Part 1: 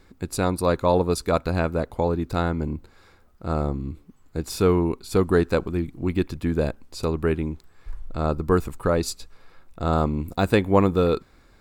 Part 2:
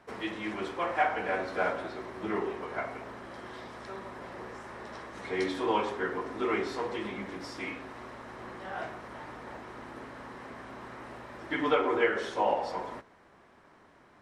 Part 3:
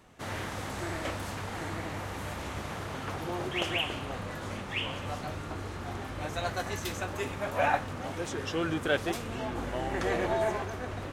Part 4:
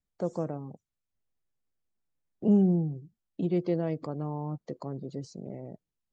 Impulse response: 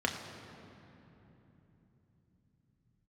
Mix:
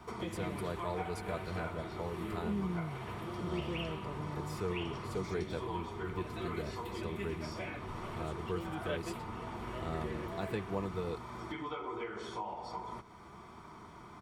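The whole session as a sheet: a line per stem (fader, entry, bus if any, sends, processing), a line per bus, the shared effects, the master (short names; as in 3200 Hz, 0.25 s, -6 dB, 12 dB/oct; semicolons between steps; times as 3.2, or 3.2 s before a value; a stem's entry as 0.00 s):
-17.0 dB, 0.00 s, no send, dry
+1.5 dB, 0.00 s, no send, bell 2000 Hz -6 dB 1 oct; comb 0.9 ms, depth 57%; compressor 3:1, threshold -44 dBFS, peak gain reduction 15.5 dB
-7.5 dB, 0.00 s, no send, fixed phaser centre 2500 Hz, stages 4; rotary speaker horn 1.2 Hz
-14.5 dB, 0.00 s, no send, power-law curve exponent 0.7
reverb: off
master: notch comb 270 Hz; three-band squash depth 40%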